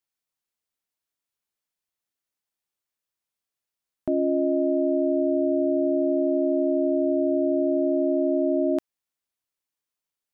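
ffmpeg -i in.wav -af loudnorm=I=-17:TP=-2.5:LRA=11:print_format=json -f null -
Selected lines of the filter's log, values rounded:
"input_i" : "-23.6",
"input_tp" : "-14.7",
"input_lra" : "3.5",
"input_thresh" : "-33.6",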